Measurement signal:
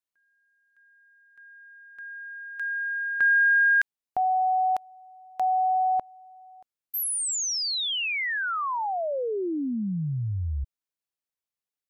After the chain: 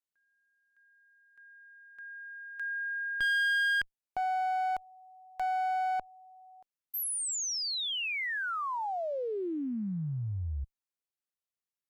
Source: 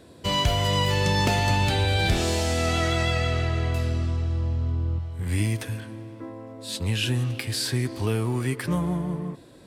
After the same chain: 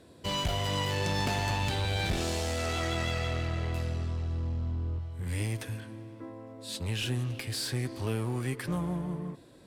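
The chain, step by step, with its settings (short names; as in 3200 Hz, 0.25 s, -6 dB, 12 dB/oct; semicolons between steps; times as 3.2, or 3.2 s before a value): one-sided clip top -25.5 dBFS; gain -5.5 dB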